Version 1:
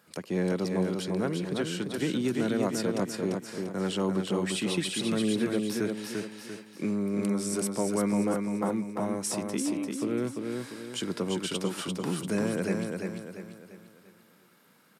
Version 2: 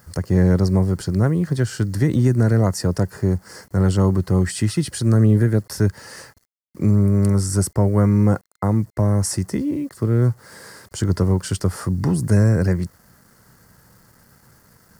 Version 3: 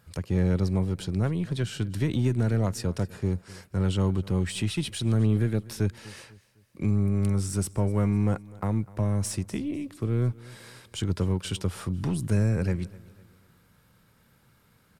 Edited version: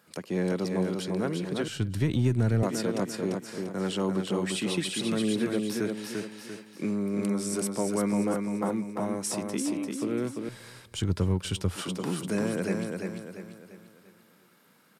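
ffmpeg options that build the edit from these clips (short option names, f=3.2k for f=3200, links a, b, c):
-filter_complex "[2:a]asplit=2[a][b];[0:a]asplit=3[c][d][e];[c]atrim=end=1.682[f];[a]atrim=start=1.678:end=2.632[g];[d]atrim=start=2.628:end=10.492[h];[b]atrim=start=10.488:end=11.762[i];[e]atrim=start=11.758[j];[f][g]acrossfade=d=0.004:c1=hsin:c2=hsin[k];[k][h]acrossfade=d=0.004:c1=hsin:c2=hsin[l];[l][i]acrossfade=d=0.004:c1=hsin:c2=hsin[m];[m][j]acrossfade=d=0.004:c1=hsin:c2=hsin"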